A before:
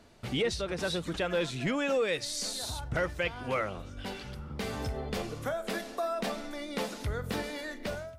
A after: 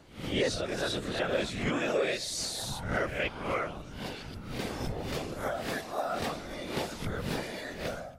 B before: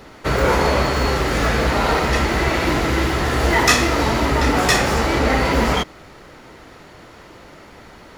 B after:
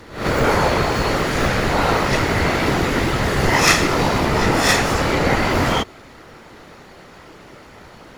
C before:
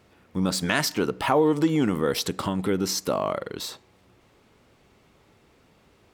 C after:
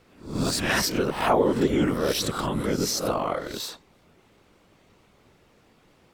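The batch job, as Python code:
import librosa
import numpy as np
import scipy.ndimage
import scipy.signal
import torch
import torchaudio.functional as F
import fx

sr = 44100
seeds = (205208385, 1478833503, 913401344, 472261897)

y = fx.spec_swells(x, sr, rise_s=0.48)
y = fx.whisperise(y, sr, seeds[0])
y = y * 10.0 ** (-1.5 / 20.0)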